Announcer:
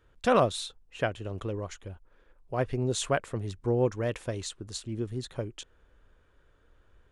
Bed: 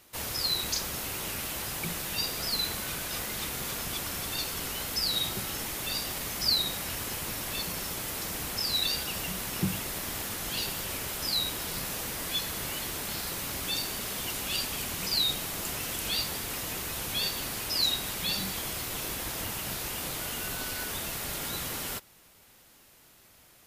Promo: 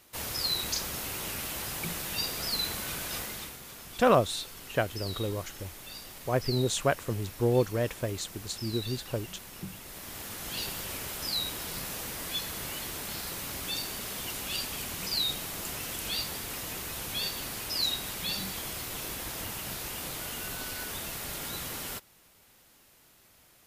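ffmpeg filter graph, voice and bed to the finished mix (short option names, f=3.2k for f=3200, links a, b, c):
-filter_complex "[0:a]adelay=3750,volume=1dB[a];[1:a]volume=8dB,afade=t=out:st=3.15:d=0.44:silence=0.298538,afade=t=in:st=9.8:d=0.83:silence=0.354813[b];[a][b]amix=inputs=2:normalize=0"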